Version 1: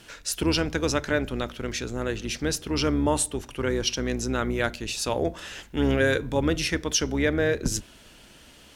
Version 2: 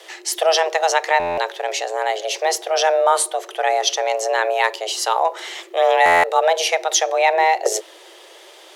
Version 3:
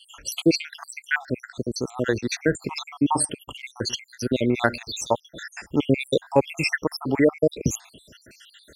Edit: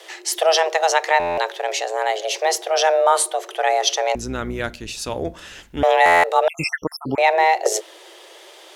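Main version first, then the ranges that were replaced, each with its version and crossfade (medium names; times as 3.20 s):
2
4.15–5.83 s: from 1
6.48–7.18 s: from 3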